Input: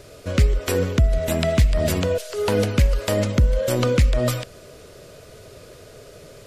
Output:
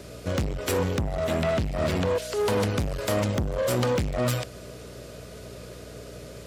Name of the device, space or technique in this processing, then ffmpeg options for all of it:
valve amplifier with mains hum: -filter_complex "[0:a]aeval=exprs='(tanh(14.1*val(0)+0.45)-tanh(0.45))/14.1':channel_layout=same,aeval=exprs='val(0)+0.00631*(sin(2*PI*60*n/s)+sin(2*PI*2*60*n/s)/2+sin(2*PI*3*60*n/s)/3+sin(2*PI*4*60*n/s)/4+sin(2*PI*5*60*n/s)/5)':channel_layout=same,highpass=74,asettb=1/sr,asplit=3[link_01][link_02][link_03];[link_01]atrim=end=1.174[link_04];[link_02]atrim=start=1.17:end=2.22,asetpts=PTS-STARTPTS,afade=type=in:duration=0.004:curve=qsin,afade=type=out:start_time=1.046:duration=0.004:curve=qsin,acrossover=split=4800[link_05][link_06];[link_06]acompressor=threshold=-47dB:ratio=4:attack=1:release=60[link_07];[link_05][link_07]amix=inputs=2:normalize=0[link_08];[link_03]atrim=start=2.216[link_09];[link_04][link_08]acrossfade=duration=0.004:curve1=hsin:curve2=qsin[link_10];[link_10][link_09]acrossfade=duration=0.004:curve1=qsin:curve2=hsin,volume=2.5dB"

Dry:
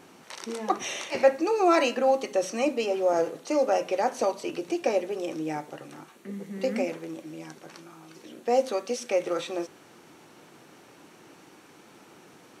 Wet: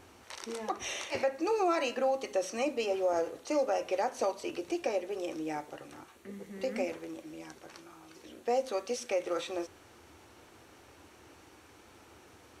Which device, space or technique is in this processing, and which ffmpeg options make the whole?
car stereo with a boomy subwoofer: -af "lowshelf=frequency=110:width_type=q:width=3:gain=12.5,alimiter=limit=-17dB:level=0:latency=1:release=198,volume=-3.5dB"

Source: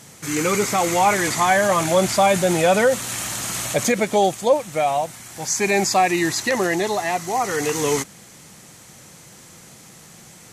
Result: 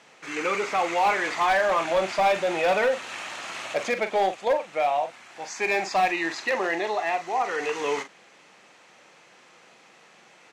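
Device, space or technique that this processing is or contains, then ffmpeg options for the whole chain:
megaphone: -filter_complex "[0:a]highpass=460,lowpass=3100,equalizer=frequency=2600:width_type=o:width=0.21:gain=5,asoftclip=type=hard:threshold=-14.5dB,asplit=2[link_01][link_02];[link_02]adelay=42,volume=-10dB[link_03];[link_01][link_03]amix=inputs=2:normalize=0,volume=-3dB"

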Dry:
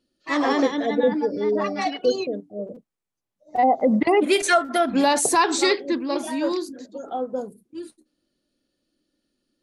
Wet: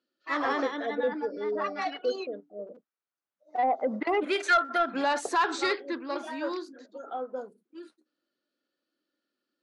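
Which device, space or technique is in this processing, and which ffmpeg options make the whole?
intercom: -af "highpass=330,lowpass=4700,equalizer=frequency=1400:width_type=o:width=0.57:gain=9,asoftclip=type=tanh:threshold=-8.5dB,volume=-7dB"

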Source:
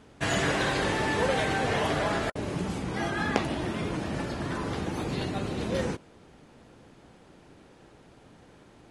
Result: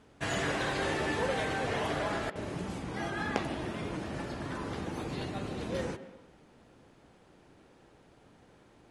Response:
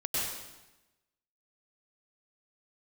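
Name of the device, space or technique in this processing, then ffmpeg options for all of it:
filtered reverb send: -filter_complex "[0:a]asettb=1/sr,asplit=3[link_01][link_02][link_03];[link_01]atrim=end=0.794[link_04];[link_02]atrim=start=0.79:end=1.19,asetpts=PTS-STARTPTS,afade=type=in:duration=0.004:curve=qsin,afade=type=out:start_time=0.396:duration=0.004:curve=qsin,asplit=2[link_05][link_06];[link_06]adelay=13,volume=-5dB[link_07];[link_05][link_07]amix=inputs=2:normalize=0,atrim=end_sample=17640[link_08];[link_03]atrim=start=1.186[link_09];[link_04][link_08]acrossfade=duration=0.004:curve1=hsin:curve2=qsin[link_10];[link_10][link_09]acrossfade=duration=0.004:curve1=qsin:curve2=hsin,asplit=2[link_11][link_12];[link_12]highpass=frequency=170:width=0.5412,highpass=frequency=170:width=1.3066,lowpass=3000[link_13];[1:a]atrim=start_sample=2205[link_14];[link_13][link_14]afir=irnorm=-1:irlink=0,volume=-17.5dB[link_15];[link_11][link_15]amix=inputs=2:normalize=0,volume=-6dB"

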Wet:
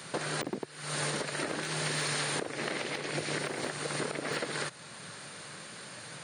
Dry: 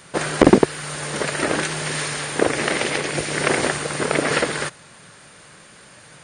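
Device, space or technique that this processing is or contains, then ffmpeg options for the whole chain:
broadcast voice chain: -filter_complex "[0:a]asettb=1/sr,asplit=3[link_01][link_02][link_03];[link_01]atrim=end=2.534[link_04];[link_02]atrim=start=2.53:end=3.39,asetpts=PTS-STARTPTS,afade=type=in:duration=0.004:curve=qsin,afade=type=out:start_time=0.856:duration=0.004:curve=qsin,highshelf=frequency=5500:gain=-4.5[link_05];[link_03]atrim=start=3.386[link_06];[link_04][link_05]acrossfade=duration=0.004:curve1=hsin:curve2=qsin[link_07];[link_07][link_06]acrossfade=duration=0.004:curve1=qsin:curve2=hsin,highpass=frequency=100:width=0.5412,highpass=frequency=100:width=1.3066,deesser=0.5,acompressor=threshold=-28dB:ratio=4,equalizer=frequency=4200:width_type=o:width=0.33:gain=5,alimiter=limit=-21.5dB:level=0:latency=1:release=477"

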